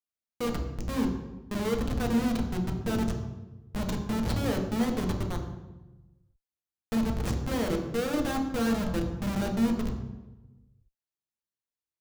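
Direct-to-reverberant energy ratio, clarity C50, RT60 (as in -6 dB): 2.0 dB, 6.5 dB, 1.1 s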